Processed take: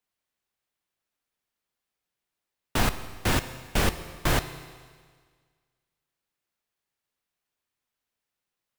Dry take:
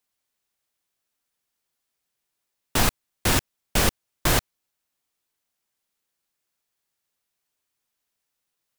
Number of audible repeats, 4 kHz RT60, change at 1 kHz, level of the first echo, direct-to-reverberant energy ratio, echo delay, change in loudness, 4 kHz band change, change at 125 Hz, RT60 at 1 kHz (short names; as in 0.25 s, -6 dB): none, 1.7 s, -2.0 dB, none, 10.5 dB, none, -4.0 dB, -5.0 dB, -1.5 dB, 1.7 s